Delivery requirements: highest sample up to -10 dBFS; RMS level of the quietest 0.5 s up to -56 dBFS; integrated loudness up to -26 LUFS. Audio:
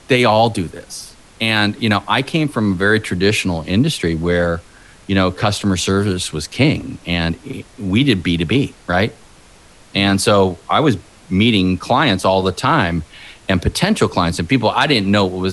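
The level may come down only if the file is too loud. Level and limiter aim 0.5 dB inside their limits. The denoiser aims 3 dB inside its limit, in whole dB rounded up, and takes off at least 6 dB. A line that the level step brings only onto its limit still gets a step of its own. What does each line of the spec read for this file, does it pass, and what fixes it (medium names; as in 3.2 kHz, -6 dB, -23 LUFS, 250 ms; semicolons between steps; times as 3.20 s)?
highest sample -2.5 dBFS: fail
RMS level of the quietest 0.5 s -45 dBFS: fail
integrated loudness -16.5 LUFS: fail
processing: noise reduction 6 dB, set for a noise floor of -45 dBFS; trim -10 dB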